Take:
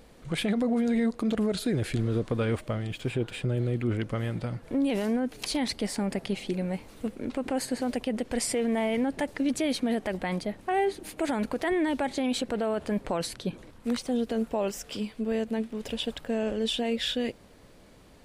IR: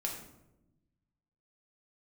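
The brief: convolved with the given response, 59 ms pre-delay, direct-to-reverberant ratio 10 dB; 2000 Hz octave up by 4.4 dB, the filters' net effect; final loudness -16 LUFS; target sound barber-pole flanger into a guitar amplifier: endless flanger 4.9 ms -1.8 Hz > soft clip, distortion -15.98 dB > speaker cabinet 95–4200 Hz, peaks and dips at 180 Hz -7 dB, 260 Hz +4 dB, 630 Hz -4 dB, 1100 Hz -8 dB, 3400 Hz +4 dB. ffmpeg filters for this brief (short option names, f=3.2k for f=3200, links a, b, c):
-filter_complex "[0:a]equalizer=f=2k:t=o:g=5.5,asplit=2[a][b];[1:a]atrim=start_sample=2205,adelay=59[c];[b][c]afir=irnorm=-1:irlink=0,volume=-12dB[d];[a][d]amix=inputs=2:normalize=0,asplit=2[e][f];[f]adelay=4.9,afreqshift=-1.8[g];[e][g]amix=inputs=2:normalize=1,asoftclip=threshold=-25dB,highpass=95,equalizer=f=180:t=q:w=4:g=-7,equalizer=f=260:t=q:w=4:g=4,equalizer=f=630:t=q:w=4:g=-4,equalizer=f=1.1k:t=q:w=4:g=-8,equalizer=f=3.4k:t=q:w=4:g=4,lowpass=f=4.2k:w=0.5412,lowpass=f=4.2k:w=1.3066,volume=18dB"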